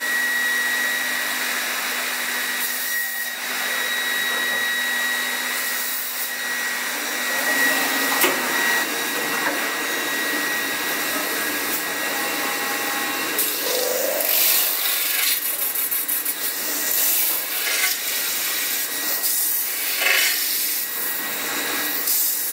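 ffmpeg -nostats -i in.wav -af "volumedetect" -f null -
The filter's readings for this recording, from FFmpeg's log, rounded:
mean_volume: -22.7 dB
max_volume: -6.1 dB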